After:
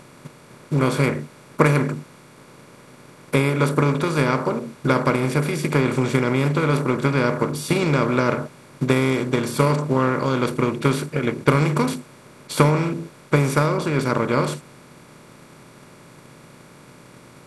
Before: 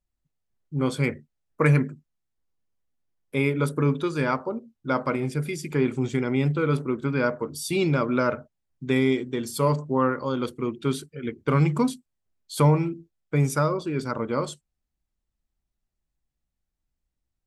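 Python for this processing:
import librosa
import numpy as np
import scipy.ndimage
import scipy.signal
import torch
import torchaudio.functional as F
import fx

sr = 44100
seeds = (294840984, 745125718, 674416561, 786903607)

y = fx.bin_compress(x, sr, power=0.4)
y = fx.transient(y, sr, attack_db=6, sustain_db=1)
y = y * librosa.db_to_amplitude(-3.0)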